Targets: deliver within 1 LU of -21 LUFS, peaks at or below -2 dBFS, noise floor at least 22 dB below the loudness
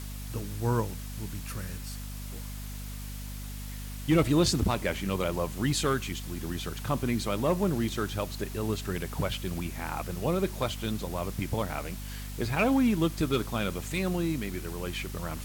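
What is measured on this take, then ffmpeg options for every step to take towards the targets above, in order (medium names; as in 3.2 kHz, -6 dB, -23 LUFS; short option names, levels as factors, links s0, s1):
hum 50 Hz; highest harmonic 250 Hz; hum level -36 dBFS; noise floor -39 dBFS; noise floor target -53 dBFS; loudness -31.0 LUFS; peak level -13.5 dBFS; loudness target -21.0 LUFS
-> -af "bandreject=f=50:t=h:w=4,bandreject=f=100:t=h:w=4,bandreject=f=150:t=h:w=4,bandreject=f=200:t=h:w=4,bandreject=f=250:t=h:w=4"
-af "afftdn=nr=14:nf=-39"
-af "volume=3.16"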